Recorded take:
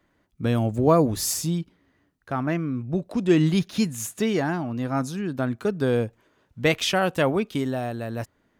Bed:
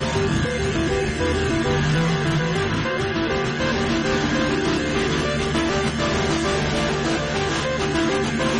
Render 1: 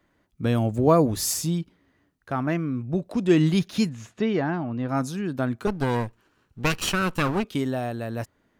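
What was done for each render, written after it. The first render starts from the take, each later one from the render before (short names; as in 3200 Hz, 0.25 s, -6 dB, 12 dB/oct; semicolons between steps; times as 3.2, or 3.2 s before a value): 3.89–4.89 air absorption 220 m; 5.67–7.44 minimum comb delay 0.71 ms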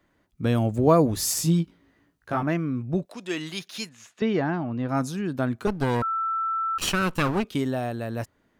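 1.35–2.43 doubler 18 ms -2 dB; 3.05–4.22 HPF 1400 Hz 6 dB/oct; 6.02–6.78 bleep 1330 Hz -23.5 dBFS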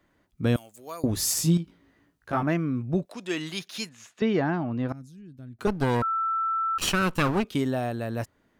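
0.56–1.04 differentiator; 1.57–2.33 compressor, threshold -28 dBFS; 4.92–5.59 passive tone stack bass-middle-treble 10-0-1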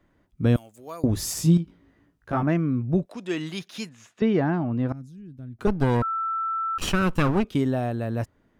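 tilt -1.5 dB/oct; notch 4300 Hz, Q 25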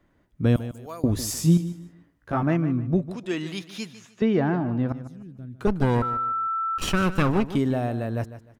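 feedback echo 0.151 s, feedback 28%, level -13.5 dB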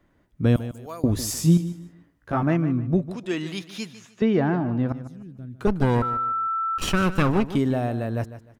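gain +1 dB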